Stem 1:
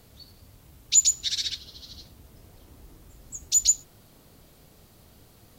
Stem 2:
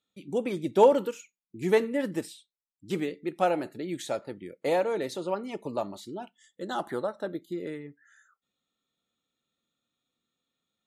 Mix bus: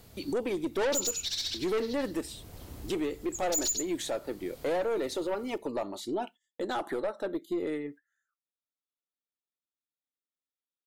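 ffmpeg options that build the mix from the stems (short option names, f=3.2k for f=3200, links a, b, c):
-filter_complex "[0:a]dynaudnorm=f=800:g=3:m=7dB,volume=0.5dB,asplit=2[a][b];[b]volume=-10.5dB[c];[1:a]agate=range=-30dB:threshold=-52dB:ratio=16:detection=peak,lowshelf=f=230:t=q:w=1.5:g=-7,acontrast=53,volume=2.5dB[d];[c]aecho=0:1:94:1[e];[a][d][e]amix=inputs=3:normalize=0,aeval=exprs='(tanh(6.31*val(0)+0.2)-tanh(0.2))/6.31':c=same,alimiter=limit=-24dB:level=0:latency=1:release=440"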